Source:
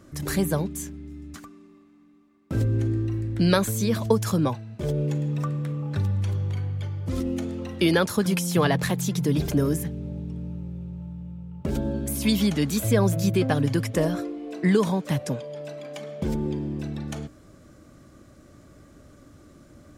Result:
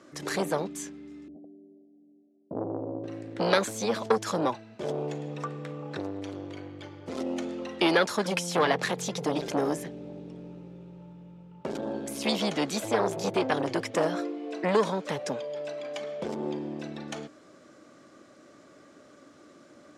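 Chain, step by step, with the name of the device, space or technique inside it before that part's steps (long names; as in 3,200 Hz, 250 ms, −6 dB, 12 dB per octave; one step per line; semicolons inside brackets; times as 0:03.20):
0:01.28–0:03.04: Butterworth low-pass 700 Hz 72 dB per octave
public-address speaker with an overloaded transformer (saturating transformer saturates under 900 Hz; band-pass filter 330–6,600 Hz)
level +2 dB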